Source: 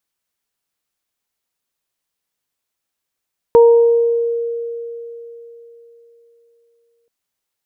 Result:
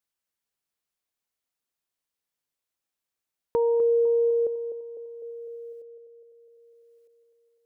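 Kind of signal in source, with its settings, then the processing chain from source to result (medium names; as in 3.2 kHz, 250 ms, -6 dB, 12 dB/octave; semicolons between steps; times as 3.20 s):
additive tone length 3.53 s, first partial 467 Hz, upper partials -10.5 dB, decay 3.68 s, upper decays 0.93 s, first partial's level -4 dB
level held to a coarse grid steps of 22 dB; on a send: band-passed feedback delay 251 ms, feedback 66%, band-pass 520 Hz, level -9 dB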